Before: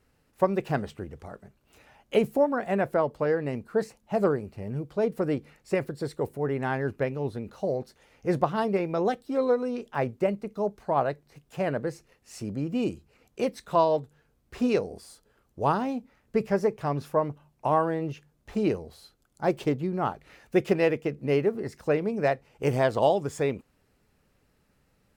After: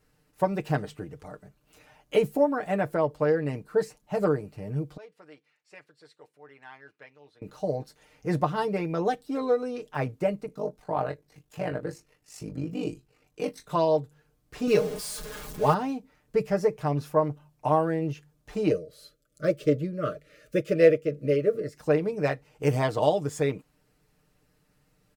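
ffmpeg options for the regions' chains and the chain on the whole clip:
-filter_complex "[0:a]asettb=1/sr,asplit=3[a][b][c];[a]atrim=end=4.974[d];[b]atrim=start=4.97:end=7.42,asetpts=PTS-STARTPTS,afade=t=in:d=0.004:c=qsin,afade=t=out:st=2.446:d=0.004:c=qsin,lowpass=2.8k,aderivative[e];[c]atrim=start=7.416[f];[d][e]acrossfade=d=0.004:c1=hsin:c2=qsin[g];[g][f]acrossfade=d=0.004:c1=qsin:c2=hsin,asettb=1/sr,asplit=3[h][i][j];[h]atrim=end=10.464[k];[i]atrim=start=10.46:end=13.7,asetpts=PTS-STARTPTS,afade=t=in:d=0.004:c=qsin,afade=t=out:st=3.236:d=0.004:c=qsin,tremolo=f=51:d=0.889,asplit=2[l][m];[m]adelay=23,volume=-8dB[n];[l][n]amix=inputs=2:normalize=0,atrim=end_sample=142884[o];[j]atrim=start=13.696[p];[k][o]acrossfade=d=0.004:c1=hsin:c2=qsin[q];[q][p]acrossfade=d=0.004:c1=qsin:c2=hsin,asettb=1/sr,asplit=3[r][s][t];[r]atrim=end=14.674[u];[s]atrim=start=14.67:end=15.74,asetpts=PTS-STARTPTS,afade=t=in:d=0.004:c=qsin,afade=t=out:st=1.066:d=0.004:c=qsin,aeval=exprs='val(0)+0.5*0.015*sgn(val(0))':c=same,aecho=1:1:4.8:0.79,atrim=end_sample=47187[v];[t]atrim=start=15.736[w];[u][v]acrossfade=d=0.004:c1=hsin:c2=qsin[x];[x][w]acrossfade=d=0.004:c1=qsin:c2=hsin,asettb=1/sr,asplit=3[y][z][aa];[y]atrim=end=18.704[ab];[z]atrim=start=18.7:end=21.77,asetpts=PTS-STARTPTS,afade=t=in:d=0.004:c=qsin,afade=t=out:st=3.066:d=0.004:c=qsin,asuperstop=centerf=860:order=20:qfactor=1.9,tremolo=f=2.8:d=0.48,equalizer=f=550:w=2.7:g=11[ac];[aa]atrim=start=21.766[ad];[ab][ac]acrossfade=d=0.004:c1=hsin:c2=qsin[ae];[ae][ad]acrossfade=d=0.004:c1=qsin:c2=hsin,bass=f=250:g=1,treble=f=4k:g=3,aecho=1:1:6.6:0.65,volume=-2dB"

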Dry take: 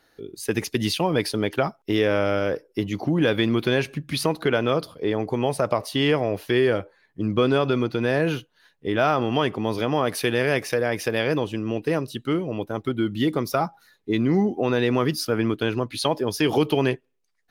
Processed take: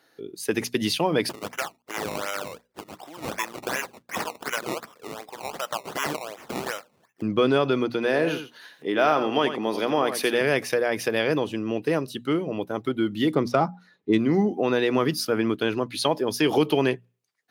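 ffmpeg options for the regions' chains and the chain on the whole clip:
-filter_complex "[0:a]asettb=1/sr,asplit=3[a][b][c];[a]atrim=end=1.294[d];[b]atrim=start=1.29:end=7.22,asetpts=PTS-STARTPTS,afade=t=in:d=0.004:c=qsin,afade=t=out:st=5.926:d=0.004:c=qsin,highpass=1.1k,acrusher=samples=19:mix=1:aa=0.000001:lfo=1:lforange=19:lforate=2.7[e];[c]atrim=start=7.216[f];[d][e]acrossfade=d=0.004:c1=hsin:c2=qsin[g];[g][f]acrossfade=d=0.004:c1=qsin:c2=hsin,asettb=1/sr,asplit=3[h][i][j];[h]atrim=end=7.944[k];[i]atrim=start=7.94:end=10.41,asetpts=PTS-STARTPTS,afade=t=in:d=0.004:c=qsin,afade=t=out:st=2.466:d=0.004:c=qsin,highpass=210,acompressor=mode=upward:threshold=-34dB:ratio=2.5:attack=3.2:release=140:knee=2.83:detection=peak,aecho=1:1:87:0.335,atrim=end_sample=108927[l];[j]atrim=start=10.406[m];[k][l]acrossfade=d=0.004:c1=hsin:c2=qsin[n];[n][m]acrossfade=d=0.004:c1=qsin:c2=hsin,asettb=1/sr,asplit=3[o][p][q];[o]atrim=end=13.354[r];[p]atrim=start=13.35:end=14.18,asetpts=PTS-STARTPTS,afade=t=in:d=0.004:c=qsin,afade=t=out:st=0.826:d=0.004:c=qsin,lowshelf=f=420:g=6,adynamicsmooth=sensitivity=2.5:basefreq=4.8k[s];[q]atrim=start=14.176[t];[r][s]acrossfade=d=0.004:c1=hsin:c2=qsin[u];[u][t]acrossfade=d=0.004:c1=qsin:c2=hsin,highpass=150,bandreject=f=60:t=h:w=6,bandreject=f=120:t=h:w=6,bandreject=f=180:t=h:w=6,bandreject=f=240:t=h:w=6"

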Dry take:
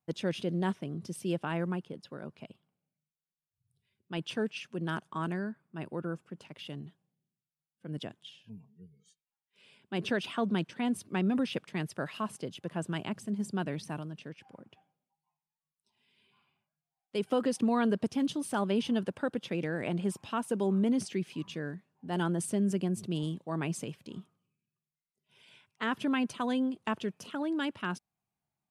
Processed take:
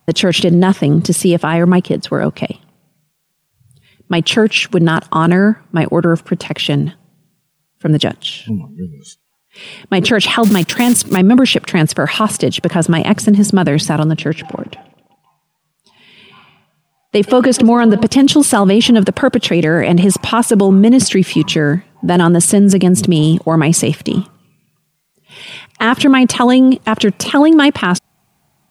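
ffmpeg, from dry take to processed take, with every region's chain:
-filter_complex "[0:a]asettb=1/sr,asplit=3[a][b][c];[a]atrim=end=10.434[d];[b]atrim=start=10.43:end=11.17,asetpts=PTS-STARTPTS,afade=t=in:d=0.004:c=qsin,afade=t=out:st=0.736:d=0.004:c=qsin,acrusher=bits=5:mode=log:mix=0:aa=0.000001,highshelf=f=4.5k:g=9[e];[c]atrim=start=11.166[f];[d][e]acrossfade=d=0.004:c1=hsin:c2=qsin[g];[g][f]acrossfade=d=0.004:c1=qsin:c2=hsin,asettb=1/sr,asplit=3[h][i][j];[h]atrim=end=14.054[k];[i]atrim=start=14.05:end=18.07,asetpts=PTS-STARTPTS,afade=t=in:d=0.004:c=qsin,afade=t=out:st=4.016:d=0.004:c=qsin,highshelf=f=5.7k:g=-6,aecho=1:1:129|258|387|516:0.0708|0.0411|0.0238|0.0138,atrim=end_sample=177282[l];[j]atrim=start=18.066[m];[k][l]acrossfade=d=0.004:c1=hsin:c2=qsin[n];[n][m]acrossfade=d=0.004:c1=qsin:c2=hsin,acontrast=89,alimiter=level_in=22dB:limit=-1dB:release=50:level=0:latency=1,volume=-1dB"

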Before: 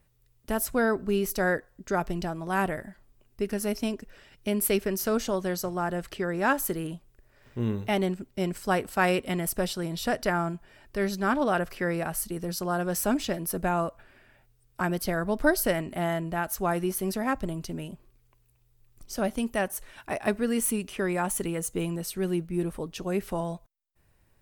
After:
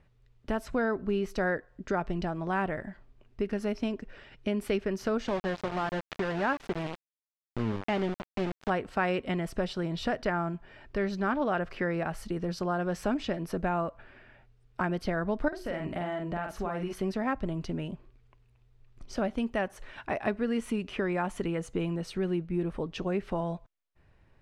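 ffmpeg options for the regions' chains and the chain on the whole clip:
-filter_complex "[0:a]asettb=1/sr,asplit=3[a][b][c];[a]atrim=end=5.284[d];[b]atrim=start=5.28:end=8.7,asetpts=PTS-STARTPTS,afade=t=in:d=0.004:c=qsin,afade=t=out:st=3.416:d=0.004:c=qsin,highshelf=f=7.5k:g=-10.5,acompressor=mode=upward:threshold=-28dB:ratio=2.5:attack=3.2:release=140:knee=2.83:detection=peak,aeval=exprs='val(0)*gte(abs(val(0)),0.0335)':c=same[e];[c]atrim=start=8.696[f];[d][e]acrossfade=d=0.004:c1=hsin:c2=qsin[g];[g][f]acrossfade=d=0.004:c1=qsin:c2=hsin,asettb=1/sr,asplit=3[h][i][j];[h]atrim=end=15.484[k];[i]atrim=start=15.48:end=16.93,asetpts=PTS-STARTPTS,afade=t=in:d=0.004:c=qsin,afade=t=out:st=1.446:d=0.004:c=qsin,bandreject=f=60:t=h:w=6,bandreject=f=120:t=h:w=6,bandreject=f=180:t=h:w=6,bandreject=f=240:t=h:w=6,bandreject=f=300:t=h:w=6,bandreject=f=360:t=h:w=6,acompressor=threshold=-32dB:ratio=4:attack=3.2:release=140:knee=1:detection=peak,asplit=2[l][m];[m]adelay=45,volume=-4.5dB[n];[l][n]amix=inputs=2:normalize=0,atrim=end_sample=63945[o];[j]atrim=start=16.926[p];[k][o]acrossfade=d=0.004:c1=hsin:c2=qsin[q];[q][p]acrossfade=d=0.004:c1=qsin:c2=hsin,lowpass=3.3k,acompressor=threshold=-34dB:ratio=2,volume=3.5dB"

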